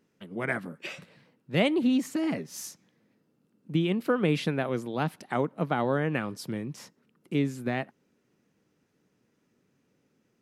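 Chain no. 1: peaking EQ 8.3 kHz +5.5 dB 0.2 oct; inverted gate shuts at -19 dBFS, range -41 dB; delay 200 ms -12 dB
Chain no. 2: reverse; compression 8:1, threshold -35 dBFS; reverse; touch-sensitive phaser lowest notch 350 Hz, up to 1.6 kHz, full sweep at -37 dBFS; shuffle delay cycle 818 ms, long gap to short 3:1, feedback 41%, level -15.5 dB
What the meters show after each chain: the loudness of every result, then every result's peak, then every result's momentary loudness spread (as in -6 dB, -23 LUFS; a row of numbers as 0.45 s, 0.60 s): -39.0 LUFS, -41.5 LUFS; -18.0 dBFS, -27.0 dBFS; 21 LU, 16 LU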